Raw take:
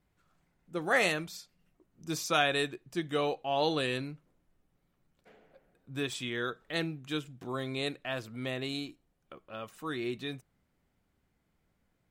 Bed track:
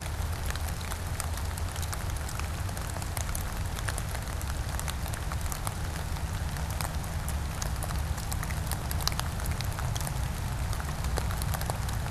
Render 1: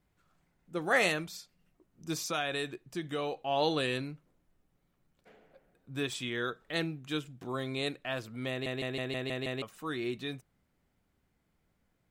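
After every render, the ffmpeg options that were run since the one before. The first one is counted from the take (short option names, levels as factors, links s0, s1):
-filter_complex "[0:a]asettb=1/sr,asplit=3[s0][s1][s2];[s0]atrim=end=2.134[s3];[s1]atrim=start=2.13:end=3.46,asetpts=PTS-STARTPTS,afade=t=in:d=0.004:c=qsin,afade=t=out:st=1.326:d=0.004:c=qsin,acompressor=threshold=0.0224:ratio=2:attack=3.2:release=140:knee=1:detection=peak[s4];[s2]atrim=start=3.456[s5];[s3][s4]acrossfade=d=0.004:c1=hsin:c2=qsin[s6];[s6][s5]acrossfade=d=0.004:c1=qsin:c2=hsin,asplit=8[s7][s8][s9][s10][s11][s12][s13][s14];[s7]atrim=end=8.662[s15];[s8]atrim=start=8.498:end=8.662[s16];[s9]atrim=start=8.498:end=8.662[s17];[s10]atrim=start=8.498:end=8.662[s18];[s11]atrim=start=8.498:end=8.662[s19];[s12]atrim=start=8.498:end=8.662[s20];[s13]atrim=start=8.498:end=8.662[s21];[s14]atrim=start=9.618[s22];[s15][s16]acrossfade=d=0.004:c1=hsin:c2=hsin[s23];[s23][s17]acrossfade=d=0.004:c1=hsin:c2=hsin[s24];[s24][s18]acrossfade=d=0.004:c1=hsin:c2=hsin[s25];[s25][s19]acrossfade=d=0.004:c1=hsin:c2=hsin[s26];[s26][s20]acrossfade=d=0.004:c1=hsin:c2=hsin[s27];[s27][s21]acrossfade=d=0.004:c1=hsin:c2=hsin[s28];[s28][s22]acrossfade=d=0.004:c1=hsin:c2=hsin"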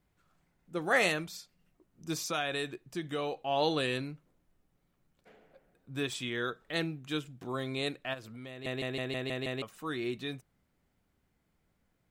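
-filter_complex "[0:a]asplit=3[s0][s1][s2];[s0]afade=t=out:st=8.13:d=0.02[s3];[s1]acompressor=threshold=0.00631:ratio=3:attack=3.2:release=140:knee=1:detection=peak,afade=t=in:st=8.13:d=0.02,afade=t=out:st=8.64:d=0.02[s4];[s2]afade=t=in:st=8.64:d=0.02[s5];[s3][s4][s5]amix=inputs=3:normalize=0"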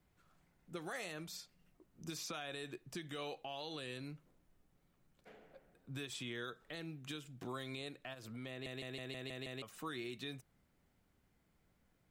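-filter_complex "[0:a]acrossover=split=1500|4100[s0][s1][s2];[s0]acompressor=threshold=0.00708:ratio=4[s3];[s1]acompressor=threshold=0.00447:ratio=4[s4];[s2]acompressor=threshold=0.00355:ratio=4[s5];[s3][s4][s5]amix=inputs=3:normalize=0,acrossover=split=110[s6][s7];[s7]alimiter=level_in=2.99:limit=0.0631:level=0:latency=1:release=99,volume=0.335[s8];[s6][s8]amix=inputs=2:normalize=0"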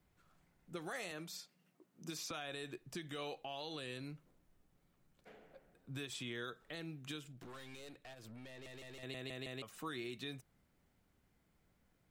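-filter_complex "[0:a]asettb=1/sr,asplit=3[s0][s1][s2];[s0]atrim=end=1.114[s3];[s1]atrim=start=1.11:end=2.31,asetpts=PTS-STARTPTS,afade=t=in:d=0.004:c=qsin,afade=t=out:st=1.196:d=0.004:c=qsin,highpass=f=150:w=0.5412,highpass=f=150:w=1.3066[s4];[s2]atrim=start=2.306[s5];[s3][s4]acrossfade=d=0.004:c1=hsin:c2=qsin[s6];[s6][s5]acrossfade=d=0.004:c1=qsin:c2=hsin,asettb=1/sr,asplit=3[s7][s8][s9];[s7]atrim=end=7.324[s10];[s8]atrim=start=7.32:end=9.03,asetpts=PTS-STARTPTS,afade=t=in:d=0.004:c=qsin,afade=t=out:st=1.706:d=0.004:c=qsin,aeval=exprs='(tanh(282*val(0)+0.4)-tanh(0.4))/282':c=same[s11];[s9]atrim=start=9.026[s12];[s10][s11]acrossfade=d=0.004:c1=hsin:c2=qsin[s13];[s13][s12]acrossfade=d=0.004:c1=qsin:c2=hsin"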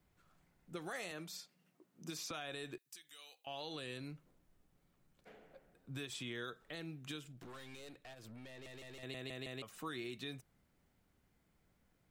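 -filter_complex "[0:a]asettb=1/sr,asplit=3[s0][s1][s2];[s0]atrim=end=2.784[s3];[s1]atrim=start=2.78:end=3.47,asetpts=PTS-STARTPTS,afade=t=in:d=0.004:c=qsin,afade=t=out:st=0.686:d=0.004:c=qsin,aderivative[s4];[s2]atrim=start=3.466[s5];[s3][s4]acrossfade=d=0.004:c1=hsin:c2=qsin[s6];[s6][s5]acrossfade=d=0.004:c1=qsin:c2=hsin"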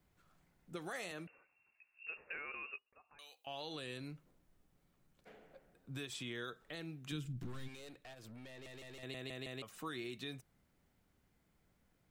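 -filter_complex "[0:a]asettb=1/sr,asplit=3[s0][s1][s2];[s0]atrim=end=1.274[s3];[s1]atrim=start=1.27:end=3.19,asetpts=PTS-STARTPTS,afade=t=in:d=0.004:c=qsin,afade=t=out:st=1.916:d=0.004:c=qsin,lowpass=f=2500:t=q:w=0.5098,lowpass=f=2500:t=q:w=0.6013,lowpass=f=2500:t=q:w=0.9,lowpass=f=2500:t=q:w=2.563,afreqshift=-2900[s4];[s2]atrim=start=3.186[s5];[s3][s4]acrossfade=d=0.004:c1=hsin:c2=qsin[s6];[s6][s5]acrossfade=d=0.004:c1=qsin:c2=hsin,asplit=3[s7][s8][s9];[s7]afade=t=out:st=7.11:d=0.02[s10];[s8]asubboost=boost=5.5:cutoff=240,afade=t=in:st=7.11:d=0.02,afade=t=out:st=7.67:d=0.02[s11];[s9]afade=t=in:st=7.67:d=0.02[s12];[s10][s11][s12]amix=inputs=3:normalize=0"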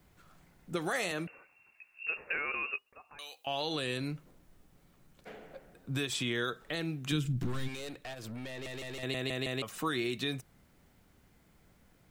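-af "volume=3.55"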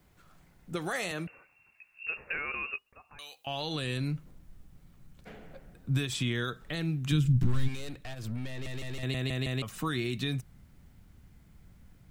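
-af "asubboost=boost=3.5:cutoff=210"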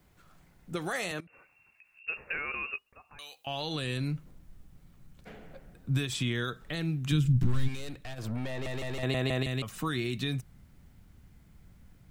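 -filter_complex "[0:a]asettb=1/sr,asplit=3[s0][s1][s2];[s0]atrim=end=1.204[s3];[s1]atrim=start=1.2:end=2.08,asetpts=PTS-STARTPTS,afade=t=in:d=0.004:c=qsin,afade=t=out:st=0.876:d=0.004:c=qsin,acompressor=threshold=0.00251:ratio=8:attack=3.2:release=140:knee=1:detection=peak[s4];[s2]atrim=start=2.076[s5];[s3][s4]acrossfade=d=0.004:c1=hsin:c2=qsin[s6];[s6][s5]acrossfade=d=0.004:c1=qsin:c2=hsin,asettb=1/sr,asplit=3[s7][s8][s9];[s7]atrim=end=8.184[s10];[s8]atrim=start=8.18:end=9.43,asetpts=PTS-STARTPTS,afade=t=in:d=0.004:c=qsin,afade=t=out:st=1.246:d=0.004:c=qsin,equalizer=f=760:t=o:w=2.1:g=10[s11];[s9]atrim=start=9.426[s12];[s10][s11]acrossfade=d=0.004:c1=hsin:c2=qsin[s13];[s13][s12]acrossfade=d=0.004:c1=qsin:c2=hsin"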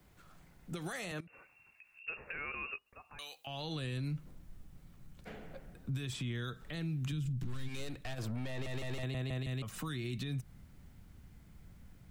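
-filter_complex "[0:a]acrossover=split=210|2100[s0][s1][s2];[s0]acompressor=threshold=0.0355:ratio=4[s3];[s1]acompressor=threshold=0.00891:ratio=4[s4];[s2]acompressor=threshold=0.00631:ratio=4[s5];[s3][s4][s5]amix=inputs=3:normalize=0,alimiter=level_in=2.11:limit=0.0631:level=0:latency=1:release=123,volume=0.473"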